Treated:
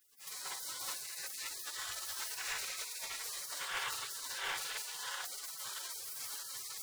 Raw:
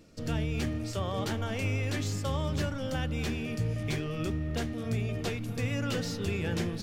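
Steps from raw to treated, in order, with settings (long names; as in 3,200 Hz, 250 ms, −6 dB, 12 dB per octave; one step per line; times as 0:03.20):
running median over 9 samples
gate on every frequency bin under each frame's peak −15 dB weak
echo with a time of its own for lows and highs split 1,100 Hz, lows 729 ms, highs 197 ms, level −3.5 dB
convolution reverb RT60 1.0 s, pre-delay 5 ms, DRR −4.5 dB
brickwall limiter −32 dBFS, peak gain reduction 10.5 dB
parametric band 490 Hz −10 dB 0.88 octaves
gate on every frequency bin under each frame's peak −25 dB weak
parametric band 1,400 Hz +10 dB 1.7 octaves
hum removal 47.97 Hz, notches 18
level +14 dB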